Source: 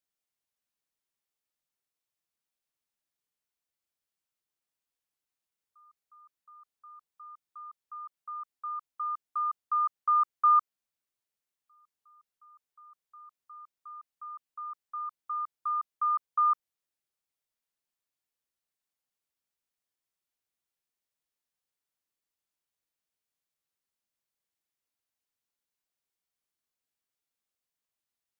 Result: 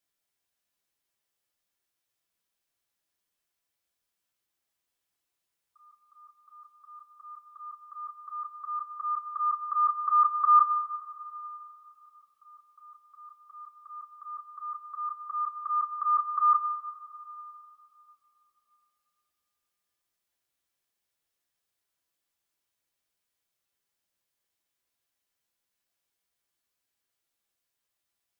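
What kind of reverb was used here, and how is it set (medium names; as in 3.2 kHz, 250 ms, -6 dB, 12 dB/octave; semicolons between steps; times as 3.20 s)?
two-slope reverb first 0.22 s, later 3.1 s, from -18 dB, DRR 0 dB; trim +3 dB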